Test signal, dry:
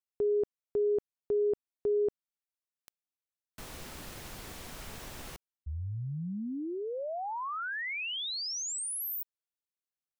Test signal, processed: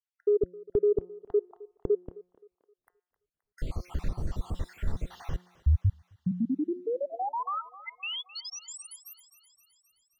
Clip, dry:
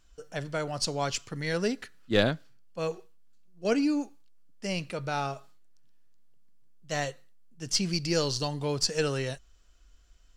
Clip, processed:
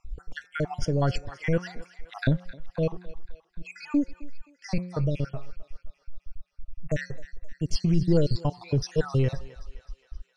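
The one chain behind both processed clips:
time-frequency cells dropped at random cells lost 63%
RIAA equalisation playback
hum removal 179.2 Hz, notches 14
in parallel at 0 dB: downward compressor, threshold −34 dBFS
on the sum: soft clipping −7.5 dBFS
on a send: feedback echo with a high-pass in the loop 262 ms, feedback 61%, high-pass 630 Hz, level −16 dB

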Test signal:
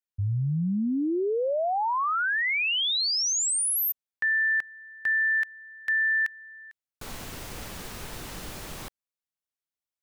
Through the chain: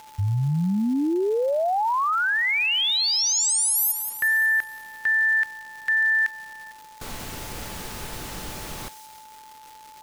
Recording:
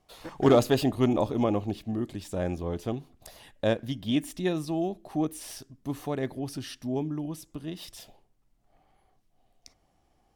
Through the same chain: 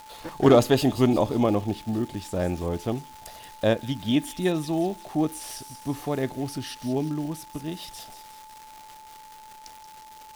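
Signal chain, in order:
surface crackle 460 per second −40 dBFS
steady tone 870 Hz −48 dBFS
delay with a high-pass on its return 180 ms, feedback 51%, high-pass 4,300 Hz, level −8 dB
level +3.5 dB

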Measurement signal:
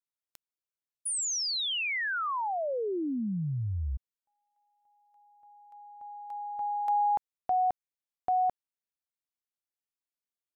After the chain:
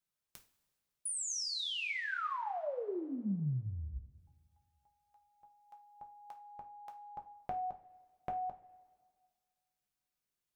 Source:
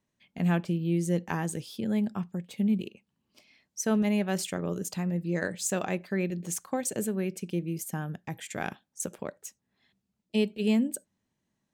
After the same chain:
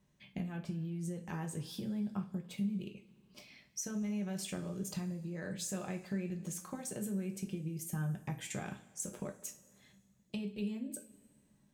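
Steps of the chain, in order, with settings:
low-shelf EQ 170 Hz +9 dB
brickwall limiter −23.5 dBFS
downward compressor 6 to 1, threshold −42 dBFS
coupled-rooms reverb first 0.29 s, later 1.8 s, from −19 dB, DRR 2 dB
level +2 dB

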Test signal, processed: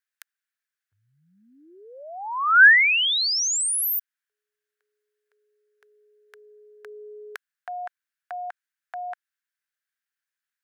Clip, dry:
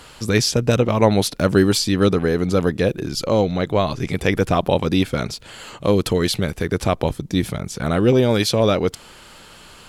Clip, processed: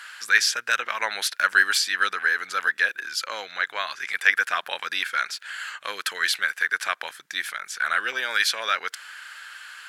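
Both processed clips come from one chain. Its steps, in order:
high-pass with resonance 1,600 Hz, resonance Q 5.6
level −2.5 dB

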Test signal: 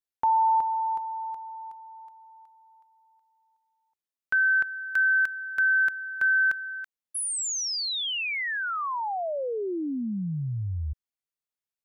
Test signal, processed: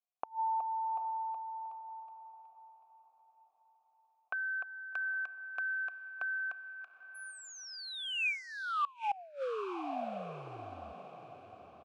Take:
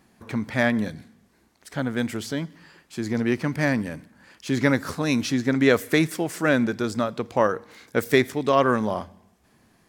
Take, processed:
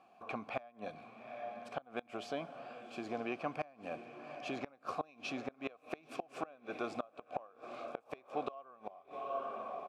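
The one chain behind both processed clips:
downward compressor 2 to 1, threshold −29 dBFS
downsampling to 32,000 Hz
formant filter a
on a send: feedback delay with all-pass diffusion 817 ms, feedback 44%, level −12.5 dB
on the sum: gate with flip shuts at −33 dBFS, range −26 dB
level +9 dB

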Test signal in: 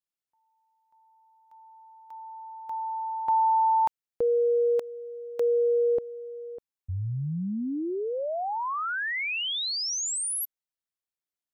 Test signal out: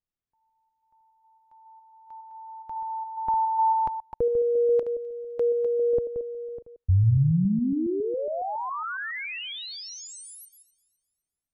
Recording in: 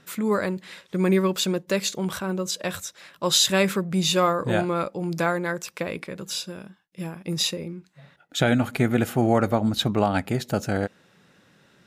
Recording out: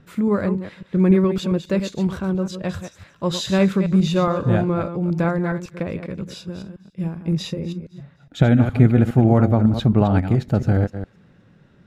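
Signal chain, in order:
delay that plays each chunk backwards 138 ms, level −9 dB
RIAA equalisation playback
on a send: delay with a high-pass on its return 256 ms, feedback 35%, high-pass 2,500 Hz, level −20.5 dB
on the sum: level −1.5 dB

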